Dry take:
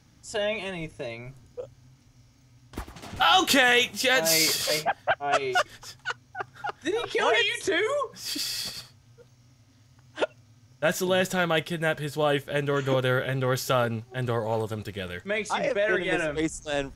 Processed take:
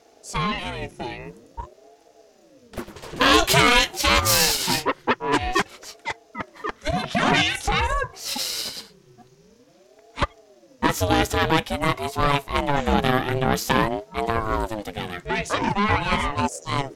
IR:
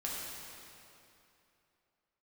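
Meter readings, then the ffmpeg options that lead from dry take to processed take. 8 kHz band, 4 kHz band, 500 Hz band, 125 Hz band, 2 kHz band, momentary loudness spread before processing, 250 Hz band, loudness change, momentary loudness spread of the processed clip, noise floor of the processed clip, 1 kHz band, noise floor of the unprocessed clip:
+4.0 dB, +3.5 dB, 0.0 dB, +5.0 dB, +2.5 dB, 17 LU, +5.5 dB, +3.5 dB, 17 LU, -55 dBFS, +6.0 dB, -59 dBFS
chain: -af "aeval=exprs='0.447*(cos(1*acos(clip(val(0)/0.447,-1,1)))-cos(1*PI/2))+0.126*(cos(4*acos(clip(val(0)/0.447,-1,1)))-cos(4*PI/2))+0.0282*(cos(5*acos(clip(val(0)/0.447,-1,1)))-cos(5*PI/2))':c=same,aeval=exprs='val(0)*sin(2*PI*410*n/s+410*0.4/0.49*sin(2*PI*0.49*n/s))':c=same,volume=4dB"

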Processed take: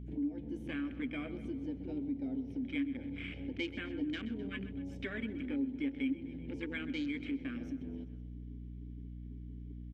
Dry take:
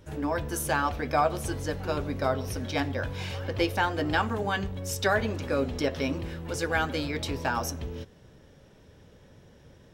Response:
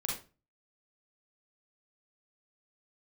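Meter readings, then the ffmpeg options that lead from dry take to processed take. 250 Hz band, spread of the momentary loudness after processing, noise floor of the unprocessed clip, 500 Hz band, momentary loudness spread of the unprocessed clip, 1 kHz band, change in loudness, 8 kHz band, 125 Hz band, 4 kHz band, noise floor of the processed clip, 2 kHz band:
-2.5 dB, 11 LU, -55 dBFS, -17.5 dB, 8 LU, -28.0 dB, -10.5 dB, under -30 dB, -13.0 dB, -13.0 dB, -46 dBFS, -13.0 dB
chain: -filter_complex "[0:a]asplit=2[a][b];[b]asoftclip=type=tanh:threshold=-27dB,volume=-11dB[c];[a][c]amix=inputs=2:normalize=0,asplit=3[d][e][f];[d]bandpass=f=270:t=q:w=8,volume=0dB[g];[e]bandpass=f=2.29k:t=q:w=8,volume=-6dB[h];[f]bandpass=f=3.01k:t=q:w=8,volume=-9dB[i];[g][h][i]amix=inputs=3:normalize=0,afwtdn=0.00355,asplit=2[j][k];[k]aecho=0:1:128|256|384|512|640:0.15|0.0793|0.042|0.0223|0.0118[l];[j][l]amix=inputs=2:normalize=0,aeval=exprs='val(0)+0.00224*(sin(2*PI*60*n/s)+sin(2*PI*2*60*n/s)/2+sin(2*PI*3*60*n/s)/3+sin(2*PI*4*60*n/s)/4+sin(2*PI*5*60*n/s)/5)':c=same,acompressor=threshold=-51dB:ratio=2,volume=9.5dB"

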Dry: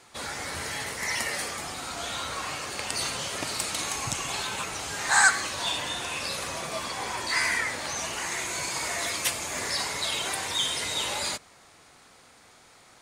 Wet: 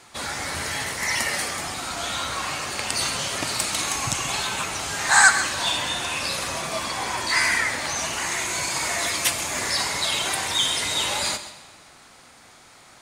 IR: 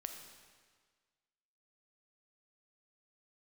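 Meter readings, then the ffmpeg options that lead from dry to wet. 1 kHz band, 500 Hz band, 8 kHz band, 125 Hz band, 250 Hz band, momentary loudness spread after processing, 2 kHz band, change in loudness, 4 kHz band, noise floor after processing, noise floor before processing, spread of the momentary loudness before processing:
+5.0 dB, +4.0 dB, +5.0 dB, +5.5 dB, +5.0 dB, 8 LU, +5.0 dB, +5.0 dB, +5.5 dB, -50 dBFS, -55 dBFS, 8 LU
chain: -filter_complex "[0:a]equalizer=f=460:t=o:w=0.42:g=-4,asplit=2[a][b];[1:a]atrim=start_sample=2205,adelay=132[c];[b][c]afir=irnorm=-1:irlink=0,volume=-9.5dB[d];[a][d]amix=inputs=2:normalize=0,volume=5dB"

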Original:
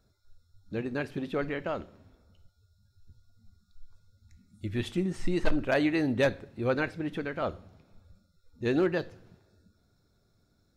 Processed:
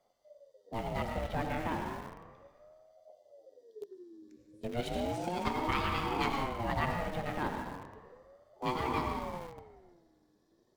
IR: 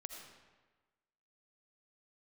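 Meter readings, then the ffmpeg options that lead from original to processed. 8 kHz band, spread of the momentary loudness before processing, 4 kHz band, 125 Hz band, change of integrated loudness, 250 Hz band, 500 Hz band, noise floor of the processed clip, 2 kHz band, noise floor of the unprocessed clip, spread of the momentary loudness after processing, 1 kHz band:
+0.5 dB, 10 LU, 0.0 dB, -3.0 dB, -4.5 dB, -7.5 dB, -7.0 dB, -71 dBFS, -4.5 dB, -70 dBFS, 17 LU, +6.5 dB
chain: -filter_complex "[1:a]atrim=start_sample=2205,asetrate=36603,aresample=44100[a];[0:a][a]afir=irnorm=-1:irlink=0,afftfilt=real='re*lt(hypot(re,im),0.282)':imag='im*lt(hypot(re,im),0.282)':win_size=1024:overlap=0.75,asplit=2[b][c];[c]acrusher=bits=4:dc=4:mix=0:aa=0.000001,volume=-8dB[d];[b][d]amix=inputs=2:normalize=0,aeval=exprs='val(0)*sin(2*PI*470*n/s+470*0.35/0.34*sin(2*PI*0.34*n/s))':c=same,volume=1.5dB"

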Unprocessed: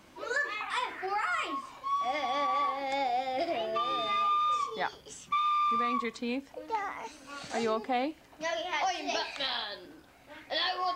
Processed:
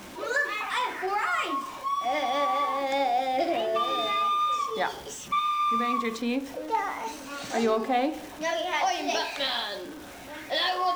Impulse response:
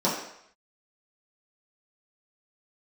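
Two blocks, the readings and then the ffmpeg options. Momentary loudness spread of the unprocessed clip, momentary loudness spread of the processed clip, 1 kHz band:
10 LU, 8 LU, +3.5 dB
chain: -filter_complex "[0:a]aeval=exprs='val(0)+0.5*0.00631*sgn(val(0))':c=same,asplit=2[a][b];[1:a]atrim=start_sample=2205[c];[b][c]afir=irnorm=-1:irlink=0,volume=-22.5dB[d];[a][d]amix=inputs=2:normalize=0,volume=2.5dB"

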